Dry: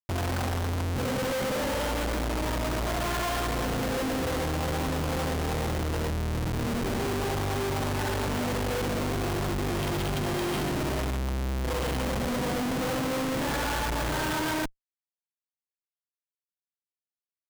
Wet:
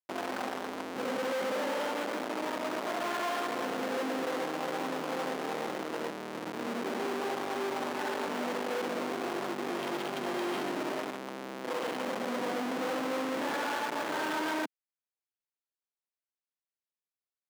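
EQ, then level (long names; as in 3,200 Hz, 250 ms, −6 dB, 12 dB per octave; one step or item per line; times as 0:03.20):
high-pass filter 220 Hz 24 dB per octave
low-pass filter 1,300 Hz 6 dB per octave
spectral tilt +2 dB per octave
0.0 dB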